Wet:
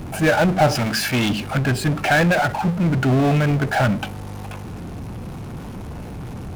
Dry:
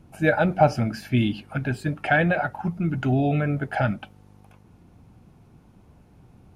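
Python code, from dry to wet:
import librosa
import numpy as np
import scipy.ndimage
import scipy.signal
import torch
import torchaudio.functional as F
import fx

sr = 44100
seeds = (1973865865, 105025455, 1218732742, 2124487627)

y = fx.power_curve(x, sr, exponent=0.5)
y = fx.tilt_shelf(y, sr, db=-5.0, hz=670.0, at=(0.75, 1.3))
y = y * librosa.db_to_amplitude(-3.0)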